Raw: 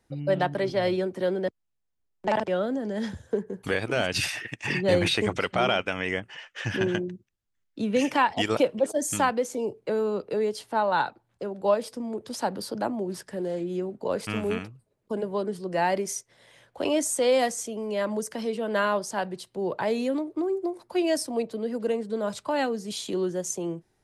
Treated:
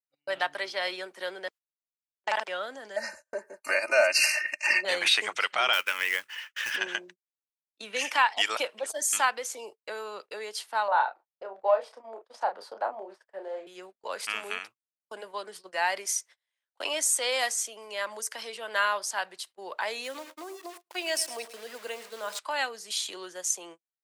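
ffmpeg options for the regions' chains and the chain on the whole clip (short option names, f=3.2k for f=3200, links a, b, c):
-filter_complex "[0:a]asettb=1/sr,asplit=3[a][b][c];[a]atrim=end=2.964[d];[b]atrim=start=2.96:end=4.85,asetpts=PTS-STARTPTS,afade=t=in:d=0.004:c=qsin,afade=t=out:st=1.886:d=0.004:c=qsin,asuperstop=centerf=3400:order=20:qfactor=3,equalizer=f=600:w=4.6:g=14,aecho=1:1:3.3:0.79,atrim=end_sample=83349[e];[c]atrim=start=4.846[f];[d][e]acrossfade=d=0.004:c1=hsin:c2=qsin[g];[g][f]acrossfade=d=0.004:c1=qsin:c2=hsin,asettb=1/sr,asplit=3[h][i][j];[h]atrim=end=5.734[k];[i]atrim=start=5.73:end=6.76,asetpts=PTS-STARTPTS,afade=t=in:d=0.004:c=qsin,afade=t=out:st=1.026:d=0.004:c=qsin,acrusher=bits=4:mode=log:mix=0:aa=0.000001,asuperstop=centerf=720:order=4:qfactor=3.4[l];[j]atrim=start=6.756[m];[k][l]acrossfade=d=0.004:c1=hsin:c2=qsin[n];[n][m]acrossfade=d=0.004:c1=qsin:c2=hsin,asettb=1/sr,asplit=3[o][p][q];[o]atrim=end=10.884[r];[p]atrim=start=10.88:end=13.67,asetpts=PTS-STARTPTS,afade=t=in:d=0.004:c=qsin,afade=t=out:st=2.786:d=0.004:c=qsin,acontrast=60,bandpass=f=640:t=q:w=1.6,asplit=2[s][t];[t]adelay=31,volume=-6.5dB[u];[s][u]amix=inputs=2:normalize=0,atrim=end_sample=123039[v];[q]atrim=start=13.666[w];[r][v]acrossfade=d=0.004:c1=hsin:c2=qsin[x];[x][w]acrossfade=d=0.004:c1=qsin:c2=hsin,asettb=1/sr,asplit=3[y][z][aa];[y]atrim=end=20.044[ab];[z]atrim=start=20.04:end=22.39,asetpts=PTS-STARTPTS,afade=t=in:d=0.004:c=qsin,afade=t=out:st=2.346:d=0.004:c=qsin,aeval=exprs='val(0)*gte(abs(val(0)),0.00794)':c=same,aecho=1:1:108|216|324|432:0.188|0.0848|0.0381|0.0172,atrim=end_sample=103635[ac];[aa]atrim=start=22.386[ad];[ab][ac]acrossfade=d=0.004:c1=hsin:c2=qsin[ae];[ae][ad]acrossfade=d=0.004:c1=qsin:c2=hsin,highpass=1.2k,agate=range=-34dB:threshold=-50dB:ratio=16:detection=peak,volume=4dB"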